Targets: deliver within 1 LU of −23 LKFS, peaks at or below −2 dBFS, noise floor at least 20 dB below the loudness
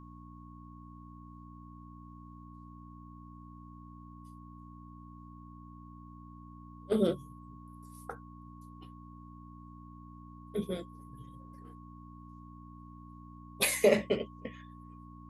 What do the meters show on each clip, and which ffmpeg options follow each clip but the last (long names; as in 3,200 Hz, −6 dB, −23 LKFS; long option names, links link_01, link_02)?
mains hum 60 Hz; hum harmonics up to 300 Hz; level of the hum −48 dBFS; interfering tone 1,100 Hz; level of the tone −55 dBFS; integrated loudness −32.0 LKFS; sample peak −11.5 dBFS; target loudness −23.0 LKFS
→ -af "bandreject=frequency=60:width_type=h:width=4,bandreject=frequency=120:width_type=h:width=4,bandreject=frequency=180:width_type=h:width=4,bandreject=frequency=240:width_type=h:width=4,bandreject=frequency=300:width_type=h:width=4"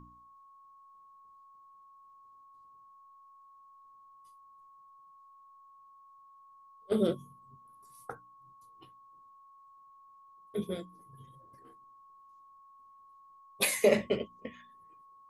mains hum none found; interfering tone 1,100 Hz; level of the tone −55 dBFS
→ -af "bandreject=frequency=1100:width=30"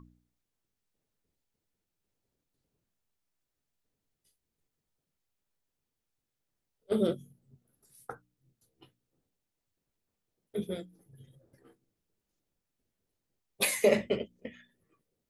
interfering tone none found; integrated loudness −31.0 LKFS; sample peak −11.5 dBFS; target loudness −23.0 LKFS
→ -af "volume=8dB"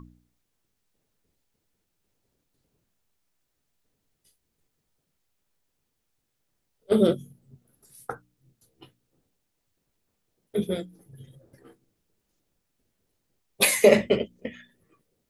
integrated loudness −23.0 LKFS; sample peak −3.5 dBFS; background noise floor −78 dBFS